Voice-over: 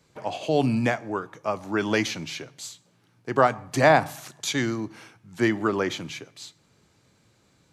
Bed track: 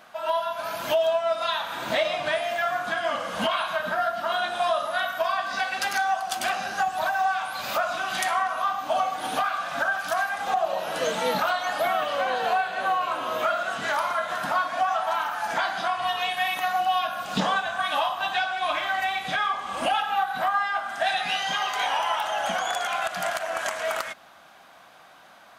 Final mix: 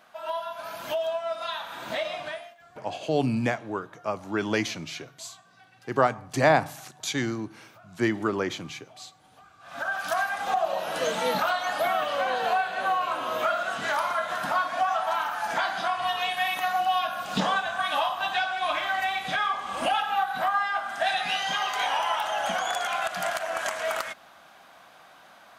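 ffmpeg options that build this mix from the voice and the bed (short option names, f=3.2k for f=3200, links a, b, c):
-filter_complex "[0:a]adelay=2600,volume=-2.5dB[a];[1:a]volume=22dB,afade=t=out:st=2.18:d=0.37:silence=0.0707946,afade=t=in:st=9.59:d=0.45:silence=0.0398107[b];[a][b]amix=inputs=2:normalize=0"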